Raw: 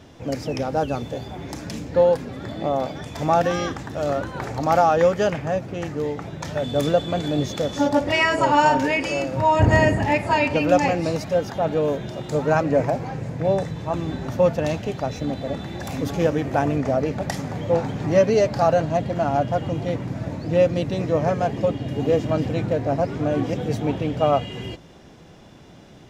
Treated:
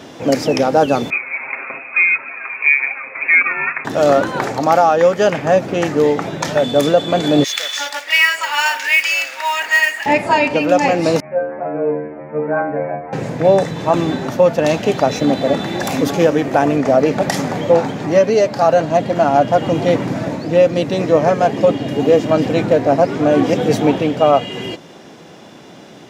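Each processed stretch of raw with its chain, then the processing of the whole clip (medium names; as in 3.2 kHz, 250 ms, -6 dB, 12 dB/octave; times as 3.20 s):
1.10–3.85 s: steep high-pass 500 Hz + frequency inversion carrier 3 kHz + comb 7.5 ms, depth 66%
7.44–10.06 s: resonant high-pass 2 kHz, resonance Q 1.5 + modulation noise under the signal 21 dB
11.20–13.13 s: steep low-pass 2.4 kHz 72 dB/octave + inharmonic resonator 73 Hz, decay 0.76 s, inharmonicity 0.002
whole clip: high-pass 210 Hz 12 dB/octave; gain riding within 4 dB 0.5 s; loudness maximiser +10 dB; trim -1 dB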